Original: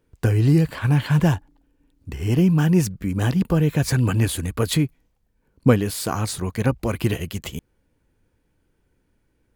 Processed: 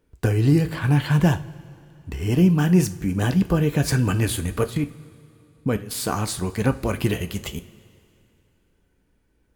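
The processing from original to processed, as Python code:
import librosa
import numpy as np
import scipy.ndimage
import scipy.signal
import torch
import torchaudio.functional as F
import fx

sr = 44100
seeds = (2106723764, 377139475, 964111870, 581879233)

y = fx.level_steps(x, sr, step_db=20, at=(4.63, 5.91))
y = fx.rev_double_slope(y, sr, seeds[0], early_s=0.31, late_s=2.7, knee_db=-18, drr_db=8.5)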